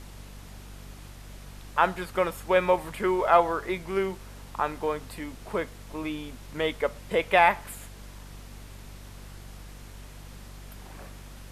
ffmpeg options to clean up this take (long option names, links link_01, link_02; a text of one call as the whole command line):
ffmpeg -i in.wav -af "bandreject=frequency=48.5:width_type=h:width=4,bandreject=frequency=97:width_type=h:width=4,bandreject=frequency=145.5:width_type=h:width=4,bandreject=frequency=194:width_type=h:width=4,bandreject=frequency=242.5:width_type=h:width=4,afftdn=noise_reduction=28:noise_floor=-45" out.wav